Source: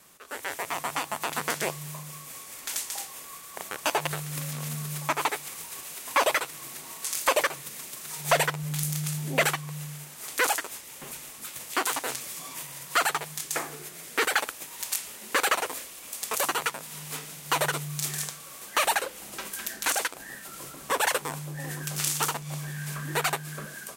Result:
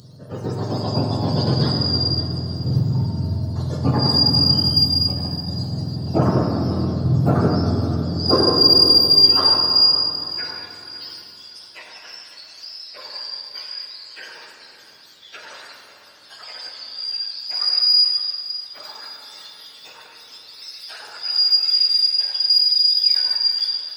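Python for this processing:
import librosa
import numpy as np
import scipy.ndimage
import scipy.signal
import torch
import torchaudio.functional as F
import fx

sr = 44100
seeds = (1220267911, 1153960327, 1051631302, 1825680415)

p1 = fx.octave_mirror(x, sr, pivot_hz=850.0)
p2 = fx.high_shelf_res(p1, sr, hz=3300.0, db=11.5, q=3.0)
p3 = 10.0 ** (-14.5 / 20.0) * np.tanh(p2 / 10.0 ** (-14.5 / 20.0))
p4 = p2 + (p3 * 10.0 ** (-4.0 / 20.0))
p5 = fx.filter_sweep_highpass(p4, sr, from_hz=140.0, to_hz=2300.0, start_s=7.29, end_s=10.57, q=2.1)
p6 = fx.pre_emphasis(p5, sr, coefficient=0.8, at=(4.71, 5.48))
p7 = p6 + fx.echo_feedback(p6, sr, ms=558, feedback_pct=41, wet_db=-16, dry=0)
p8 = fx.room_shoebox(p7, sr, seeds[0], volume_m3=140.0, walls='hard', distance_m=0.45)
y = p8 * 10.0 ** (-1.0 / 20.0)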